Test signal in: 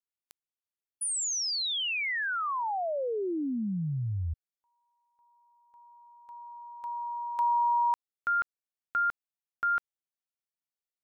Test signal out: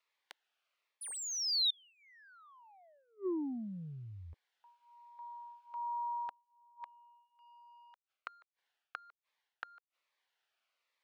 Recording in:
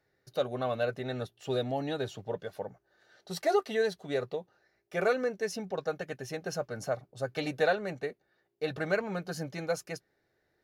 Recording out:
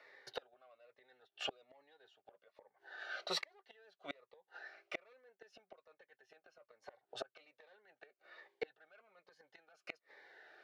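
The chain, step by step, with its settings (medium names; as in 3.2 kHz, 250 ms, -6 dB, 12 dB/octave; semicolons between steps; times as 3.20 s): overdrive pedal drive 17 dB, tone 5.6 kHz, clips at -15.5 dBFS; bass shelf 190 Hz -6 dB; reverse; compression 5:1, threshold -34 dBFS; reverse; three-band isolator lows -19 dB, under 440 Hz, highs -20 dB, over 3.8 kHz; inverted gate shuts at -35 dBFS, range -35 dB; Shepard-style phaser falling 1.2 Hz; trim +10 dB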